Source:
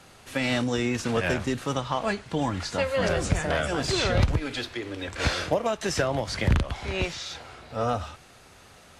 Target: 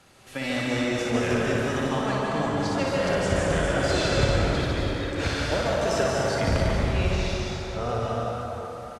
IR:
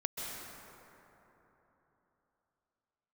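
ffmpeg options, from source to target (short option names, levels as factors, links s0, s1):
-filter_complex "[0:a]aecho=1:1:60|144|261.6|426.2|656.7:0.631|0.398|0.251|0.158|0.1[s0];[1:a]atrim=start_sample=2205,asetrate=41013,aresample=44100[s1];[s0][s1]afir=irnorm=-1:irlink=0,volume=0.631"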